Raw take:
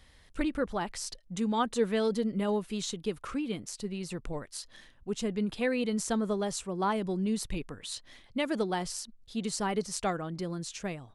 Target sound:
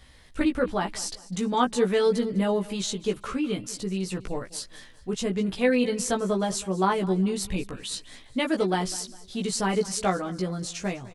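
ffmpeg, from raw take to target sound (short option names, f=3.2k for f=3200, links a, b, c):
-filter_complex "[0:a]asplit=2[a][b];[b]adelay=16,volume=-3dB[c];[a][c]amix=inputs=2:normalize=0,aecho=1:1:203|406|609:0.112|0.0415|0.0154,volume=4dB"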